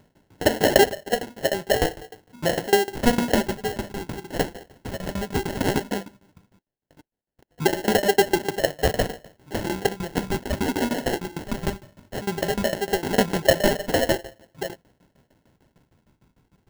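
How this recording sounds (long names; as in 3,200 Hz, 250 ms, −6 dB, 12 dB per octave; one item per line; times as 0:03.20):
phaser sweep stages 12, 0.16 Hz, lowest notch 460–1,900 Hz
aliases and images of a low sample rate 1,200 Hz, jitter 0%
tremolo saw down 6.6 Hz, depth 95%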